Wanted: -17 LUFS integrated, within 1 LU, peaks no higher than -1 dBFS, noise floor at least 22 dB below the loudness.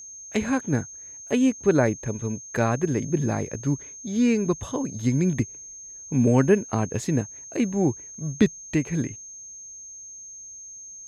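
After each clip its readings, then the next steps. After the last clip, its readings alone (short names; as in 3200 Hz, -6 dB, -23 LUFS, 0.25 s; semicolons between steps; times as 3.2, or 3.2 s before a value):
steady tone 6400 Hz; tone level -39 dBFS; loudness -25.0 LUFS; peak -7.0 dBFS; loudness target -17.0 LUFS
-> notch 6400 Hz, Q 30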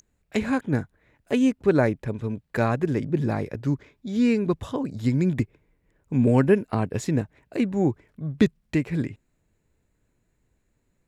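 steady tone none; loudness -25.0 LUFS; peak -7.0 dBFS; loudness target -17.0 LUFS
-> gain +8 dB; limiter -1 dBFS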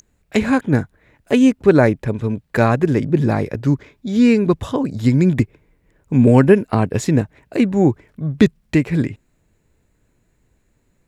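loudness -17.0 LUFS; peak -1.0 dBFS; noise floor -64 dBFS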